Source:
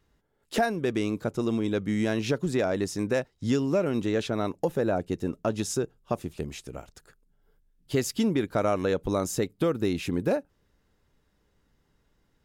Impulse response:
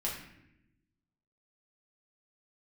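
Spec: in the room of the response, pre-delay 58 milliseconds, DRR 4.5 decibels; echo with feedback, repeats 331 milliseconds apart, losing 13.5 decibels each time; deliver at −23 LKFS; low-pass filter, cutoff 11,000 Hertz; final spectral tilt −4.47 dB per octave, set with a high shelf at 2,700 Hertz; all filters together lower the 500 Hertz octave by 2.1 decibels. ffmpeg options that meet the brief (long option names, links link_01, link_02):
-filter_complex "[0:a]lowpass=11000,equalizer=frequency=500:width_type=o:gain=-3,highshelf=frequency=2700:gain=8.5,aecho=1:1:331|662:0.211|0.0444,asplit=2[link_01][link_02];[1:a]atrim=start_sample=2205,adelay=58[link_03];[link_02][link_03]afir=irnorm=-1:irlink=0,volume=-8dB[link_04];[link_01][link_04]amix=inputs=2:normalize=0,volume=4dB"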